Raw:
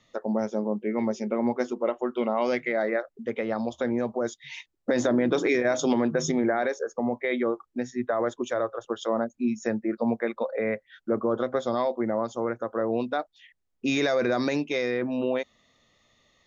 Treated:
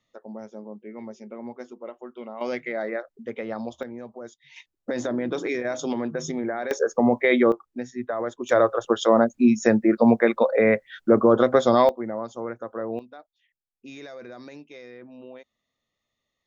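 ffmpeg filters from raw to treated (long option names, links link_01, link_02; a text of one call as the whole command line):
ffmpeg -i in.wav -af "asetnsamples=nb_out_samples=441:pad=0,asendcmd='2.41 volume volume -3dB;3.83 volume volume -11dB;4.56 volume volume -4dB;6.71 volume volume 8dB;7.52 volume volume -2dB;8.49 volume volume 9dB;11.89 volume volume -3.5dB;12.99 volume volume -16.5dB',volume=-11.5dB" out.wav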